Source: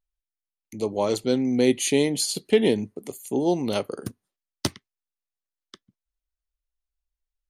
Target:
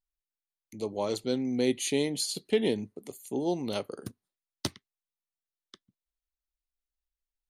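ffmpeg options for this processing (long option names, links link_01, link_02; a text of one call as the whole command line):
ffmpeg -i in.wav -af "equalizer=frequency=3900:width_type=o:width=0.41:gain=3.5,volume=-7dB" out.wav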